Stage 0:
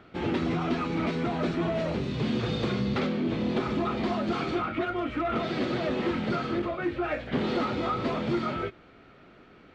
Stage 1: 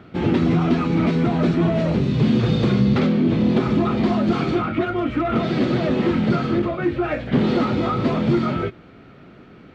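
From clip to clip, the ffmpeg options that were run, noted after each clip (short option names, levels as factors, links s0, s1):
-af "equalizer=f=150:w=0.59:g=8.5,volume=1.68"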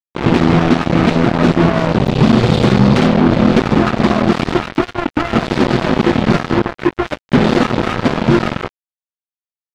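-af "acrusher=bits=2:mix=0:aa=0.5,volume=2"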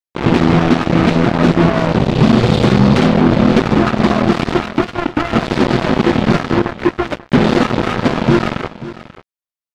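-af "aecho=1:1:537:0.158"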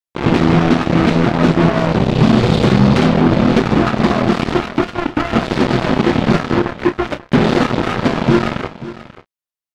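-filter_complex "[0:a]asplit=2[s0][s1];[s1]adelay=31,volume=0.251[s2];[s0][s2]amix=inputs=2:normalize=0,volume=0.891"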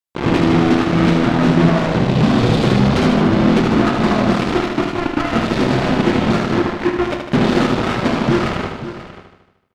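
-af "asoftclip=type=tanh:threshold=0.422,aecho=1:1:76|152|228|304|380|456|532|608:0.501|0.296|0.174|0.103|0.0607|0.0358|0.0211|0.0125"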